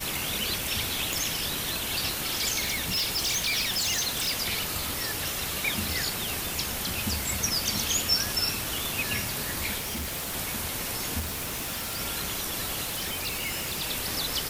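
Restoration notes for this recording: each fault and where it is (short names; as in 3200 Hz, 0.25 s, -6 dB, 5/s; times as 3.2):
1.13 pop
2.61–4.32 clipped -23.5 dBFS
5.91 pop
9.77–10.35 clipped -29 dBFS
11.19–12.01 clipped -29 dBFS
12.84–13.83 clipped -27.5 dBFS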